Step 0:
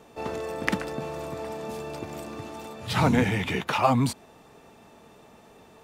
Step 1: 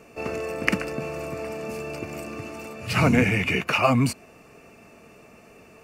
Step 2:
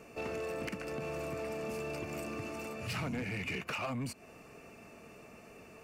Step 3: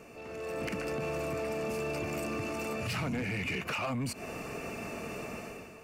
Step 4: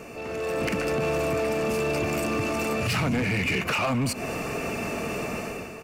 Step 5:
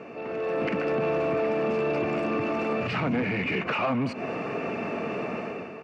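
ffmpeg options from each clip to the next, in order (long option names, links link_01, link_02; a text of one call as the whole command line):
ffmpeg -i in.wav -af "superequalizer=9b=0.447:12b=2:13b=0.316,volume=2.5dB" out.wav
ffmpeg -i in.wav -af "acompressor=threshold=-29dB:ratio=5,asoftclip=type=tanh:threshold=-27.5dB,volume=-3.5dB" out.wav
ffmpeg -i in.wav -af "alimiter=level_in=18.5dB:limit=-24dB:level=0:latency=1:release=64,volume=-18.5dB,dynaudnorm=framelen=130:gausssize=7:maxgain=12dB,volume=2dB" out.wav
ffmpeg -i in.wav -filter_complex "[0:a]asplit=2[link_01][link_02];[link_02]asoftclip=type=hard:threshold=-39dB,volume=-7.5dB[link_03];[link_01][link_03]amix=inputs=2:normalize=0,asplit=2[link_04][link_05];[link_05]adelay=221.6,volume=-17dB,highshelf=frequency=4000:gain=-4.99[link_06];[link_04][link_06]amix=inputs=2:normalize=0,volume=7dB" out.wav
ffmpeg -i in.wav -af "highpass=170,lowpass=3800,aemphasis=mode=reproduction:type=75fm" out.wav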